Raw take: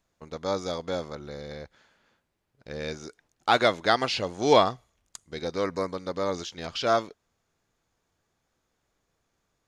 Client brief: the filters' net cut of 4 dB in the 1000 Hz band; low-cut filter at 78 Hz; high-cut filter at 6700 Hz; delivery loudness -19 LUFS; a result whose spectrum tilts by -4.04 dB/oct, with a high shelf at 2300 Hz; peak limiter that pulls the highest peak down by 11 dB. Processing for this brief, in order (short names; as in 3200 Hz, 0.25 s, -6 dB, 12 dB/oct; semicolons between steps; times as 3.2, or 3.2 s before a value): HPF 78 Hz; LPF 6700 Hz; bell 1000 Hz -4 dB; high shelf 2300 Hz -8 dB; gain +15 dB; limiter -4 dBFS